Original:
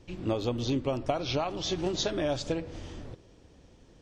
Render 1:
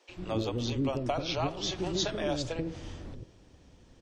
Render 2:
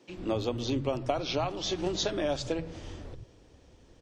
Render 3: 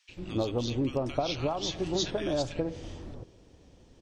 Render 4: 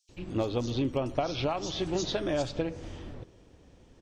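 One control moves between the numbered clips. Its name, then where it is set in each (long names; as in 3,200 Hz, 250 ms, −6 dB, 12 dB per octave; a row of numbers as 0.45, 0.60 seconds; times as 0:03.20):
multiband delay without the direct sound, split: 460, 180, 1,500, 4,800 Hertz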